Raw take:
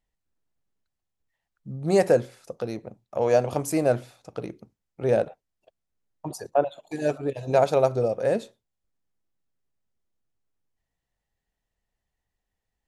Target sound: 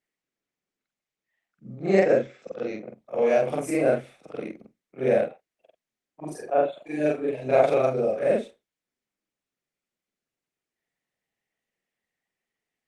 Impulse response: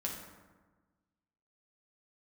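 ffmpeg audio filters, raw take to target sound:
-af "afftfilt=real='re':imag='-im':win_size=4096:overlap=0.75,highpass=f=160:w=0.5412,highpass=f=160:w=1.3066,equalizer=f=170:t=q:w=4:g=-3,equalizer=f=930:t=q:w=4:g=-8,equalizer=f=2.2k:t=q:w=4:g=8,equalizer=f=4.6k:t=q:w=4:g=-10,equalizer=f=6.9k:t=q:w=4:g=-9,lowpass=f=9k:w=0.5412,lowpass=f=9k:w=1.3066,volume=6dB" -ar 48000 -c:a libopus -b:a 24k

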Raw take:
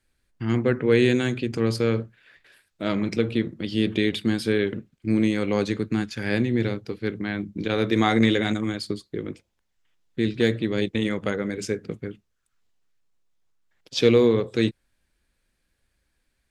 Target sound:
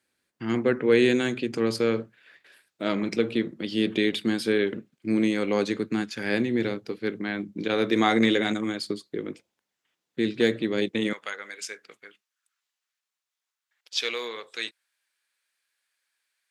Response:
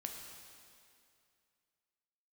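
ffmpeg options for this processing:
-af "asetnsamples=n=441:p=0,asendcmd='11.13 highpass f 1200',highpass=210"

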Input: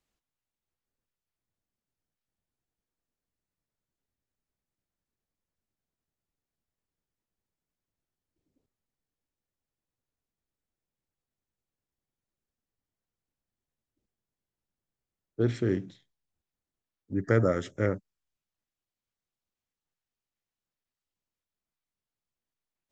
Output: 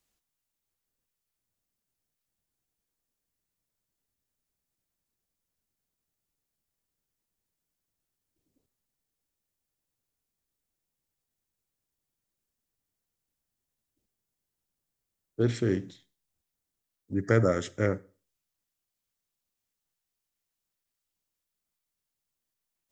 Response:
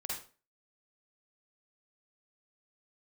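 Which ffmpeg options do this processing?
-filter_complex "[0:a]highshelf=f=5k:g=10,asplit=2[a][b];[1:a]atrim=start_sample=2205[c];[b][c]afir=irnorm=-1:irlink=0,volume=-20.5dB[d];[a][d]amix=inputs=2:normalize=0"

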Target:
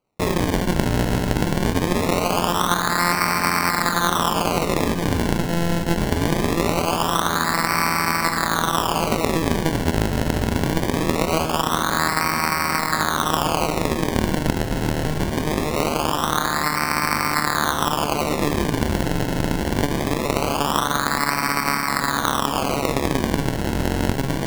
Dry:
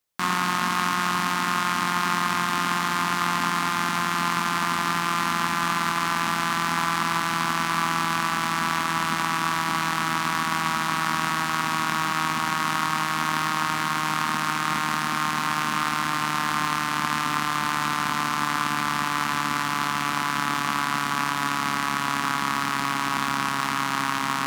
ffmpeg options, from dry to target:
-af "acrusher=samples=25:mix=1:aa=0.000001:lfo=1:lforange=25:lforate=0.22,volume=4dB"

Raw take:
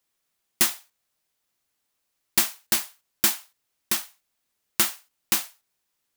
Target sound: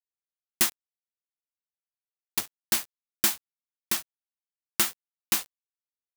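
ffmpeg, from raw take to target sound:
-filter_complex "[0:a]asplit=3[a][b][c];[a]afade=t=out:st=0.69:d=0.02[d];[b]aeval=exprs='0.596*(cos(1*acos(clip(val(0)/0.596,-1,1)))-cos(1*PI/2))+0.188*(cos(3*acos(clip(val(0)/0.596,-1,1)))-cos(3*PI/2))+0.0668*(cos(5*acos(clip(val(0)/0.596,-1,1)))-cos(5*PI/2))+0.0944*(cos(7*acos(clip(val(0)/0.596,-1,1)))-cos(7*PI/2))':c=same,afade=t=in:st=0.69:d=0.02,afade=t=out:st=2.58:d=0.02[e];[c]afade=t=in:st=2.58:d=0.02[f];[d][e][f]amix=inputs=3:normalize=0,aeval=exprs='val(0)*gte(abs(val(0)),0.0251)':c=same,volume=-2.5dB"

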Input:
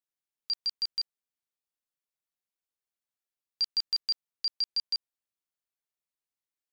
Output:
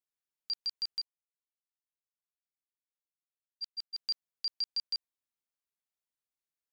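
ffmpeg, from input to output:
-filter_complex "[0:a]asplit=3[a][b][c];[a]afade=t=out:st=1:d=0.02[d];[b]agate=range=-33dB:threshold=-21dB:ratio=3:detection=peak,afade=t=in:st=1:d=0.02,afade=t=out:st=3.97:d=0.02[e];[c]afade=t=in:st=3.97:d=0.02[f];[d][e][f]amix=inputs=3:normalize=0,volume=-4dB"

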